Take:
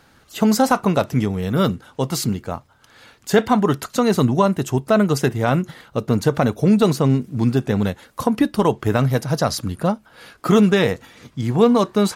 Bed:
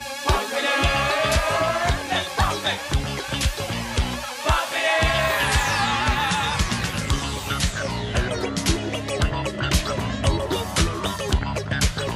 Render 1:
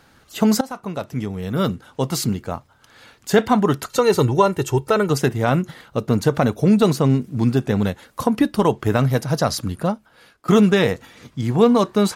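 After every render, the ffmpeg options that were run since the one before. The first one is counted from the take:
-filter_complex "[0:a]asettb=1/sr,asplit=3[a][b][c];[a]atrim=end=3.894[d];[b]atrim=start=3.89:end=5.1,asetpts=PTS-STARTPTS,afade=t=in:d=0.004:c=qsin,afade=t=out:st=1.206:d=0.004:c=qsin,aecho=1:1:2.2:0.65,atrim=end_sample=53361[e];[c]atrim=start=5.096[f];[d][e]acrossfade=d=0.004:c1=hsin:c2=qsin[g];[g][f]acrossfade=d=0.004:c1=qsin:c2=hsin,asplit=3[h][i][j];[h]atrim=end=0.61,asetpts=PTS-STARTPTS,afade=t=out:st=0.606:d=0.004:c=hsin:silence=0.11885[k];[i]atrim=start=0.61:end=10.48,asetpts=PTS-STARTPTS,afade=t=in:d=1.4:silence=0.11885,afade=t=out:st=9.11:d=0.76:silence=0.149624[l];[j]atrim=start=10.48,asetpts=PTS-STARTPTS,afade=t=in:d=0.004:c=hsin:silence=0.149624[m];[k][l][m]concat=n=3:v=0:a=1"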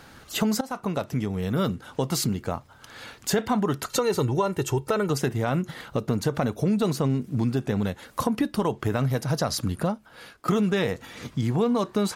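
-filter_complex "[0:a]asplit=2[a][b];[b]alimiter=limit=-13.5dB:level=0:latency=1,volume=-2.5dB[c];[a][c]amix=inputs=2:normalize=0,acompressor=threshold=-26dB:ratio=2.5"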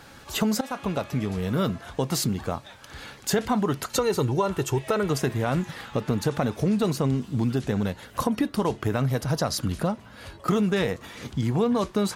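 -filter_complex "[1:a]volume=-23.5dB[a];[0:a][a]amix=inputs=2:normalize=0"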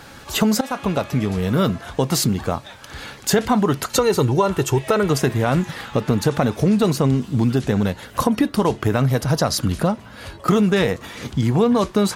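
-af "volume=6.5dB"

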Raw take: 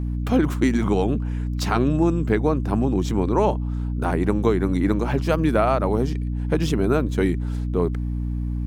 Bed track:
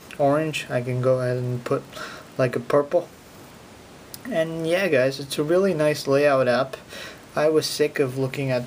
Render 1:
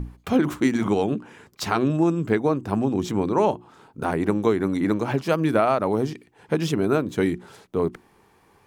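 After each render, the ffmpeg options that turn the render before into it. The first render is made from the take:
-af "bandreject=f=60:t=h:w=6,bandreject=f=120:t=h:w=6,bandreject=f=180:t=h:w=6,bandreject=f=240:t=h:w=6,bandreject=f=300:t=h:w=6,bandreject=f=360:t=h:w=6"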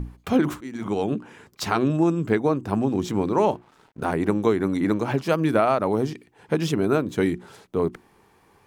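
-filter_complex "[0:a]asettb=1/sr,asplit=3[a][b][c];[a]atrim=end=2.874[d];[b]atrim=start=2.87:end=4.13,asetpts=PTS-STARTPTS,afade=t=in:d=0.004:c=qsin,afade=t=out:st=1.256:d=0.004:c=qsin,aeval=exprs='sgn(val(0))*max(abs(val(0))-0.00211,0)':c=same[e];[c]atrim=start=4.126[f];[d][e]acrossfade=d=0.004:c1=hsin:c2=qsin[g];[g][f]acrossfade=d=0.004:c1=qsin:c2=hsin,asplit=2[h][i];[h]atrim=end=0.61,asetpts=PTS-STARTPTS,afade=t=out:st=0.606:d=0.004:c=hsin:silence=0.0749894[j];[i]atrim=start=0.61,asetpts=PTS-STARTPTS,afade=t=in:d=0.54:silence=0.0749894[k];[j][k]concat=n=2:v=0:a=1"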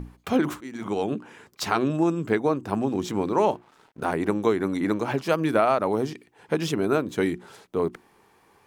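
-af "lowshelf=f=200:g=-7.5"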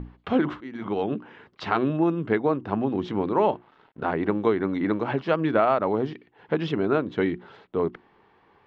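-af "lowpass=f=3.5k:w=0.5412,lowpass=f=3.5k:w=1.3066,bandreject=f=2.4k:w=16"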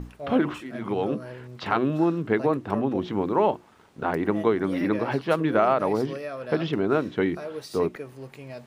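-filter_complex "[1:a]volume=-16dB[a];[0:a][a]amix=inputs=2:normalize=0"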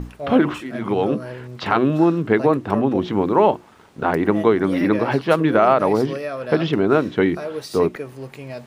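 -af "volume=6.5dB,alimiter=limit=-3dB:level=0:latency=1"

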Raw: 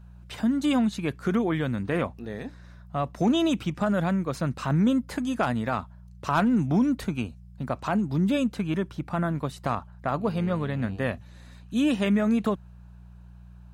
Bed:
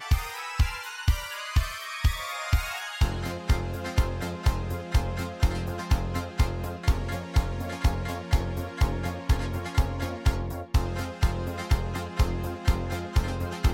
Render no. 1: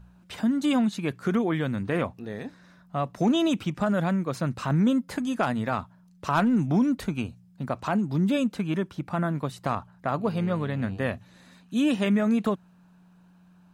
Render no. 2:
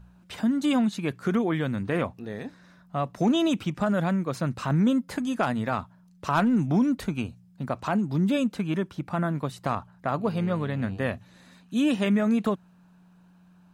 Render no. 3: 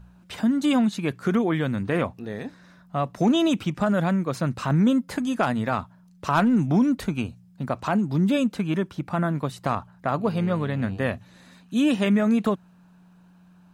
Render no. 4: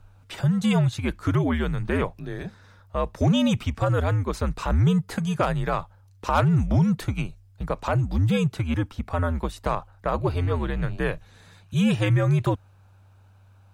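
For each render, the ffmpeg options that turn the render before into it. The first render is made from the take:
-af "bandreject=f=60:t=h:w=4,bandreject=f=120:t=h:w=4"
-af anull
-af "volume=2.5dB"
-af "afreqshift=-83"

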